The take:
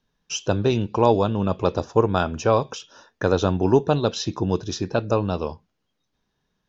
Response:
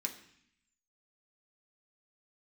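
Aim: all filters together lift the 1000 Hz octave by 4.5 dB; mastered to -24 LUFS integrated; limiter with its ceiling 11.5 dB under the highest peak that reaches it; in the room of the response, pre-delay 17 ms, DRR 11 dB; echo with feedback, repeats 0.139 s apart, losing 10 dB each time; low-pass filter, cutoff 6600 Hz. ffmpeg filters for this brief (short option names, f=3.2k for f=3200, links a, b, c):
-filter_complex "[0:a]lowpass=6.6k,equalizer=f=1k:t=o:g=5.5,alimiter=limit=-12.5dB:level=0:latency=1,aecho=1:1:139|278|417|556:0.316|0.101|0.0324|0.0104,asplit=2[a][b];[1:a]atrim=start_sample=2205,adelay=17[c];[b][c]afir=irnorm=-1:irlink=0,volume=-11dB[d];[a][d]amix=inputs=2:normalize=0,volume=1.5dB"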